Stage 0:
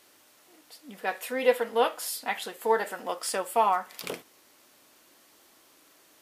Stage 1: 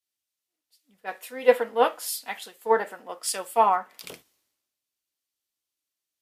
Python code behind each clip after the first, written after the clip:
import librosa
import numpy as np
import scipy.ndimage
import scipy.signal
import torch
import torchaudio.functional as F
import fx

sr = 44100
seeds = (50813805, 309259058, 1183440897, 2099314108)

y = fx.band_widen(x, sr, depth_pct=100)
y = F.gain(torch.from_numpy(y), -3.5).numpy()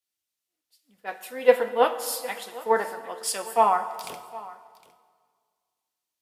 y = x + 10.0 ** (-19.5 / 20.0) * np.pad(x, (int(759 * sr / 1000.0), 0))[:len(x)]
y = fx.rev_plate(y, sr, seeds[0], rt60_s=1.9, hf_ratio=0.75, predelay_ms=0, drr_db=10.5)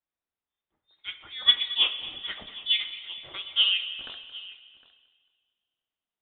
y = fx.freq_invert(x, sr, carrier_hz=3900)
y = fx.echo_feedback(y, sr, ms=223, feedback_pct=42, wet_db=-17)
y = F.gain(torch.from_numpy(y), -3.5).numpy()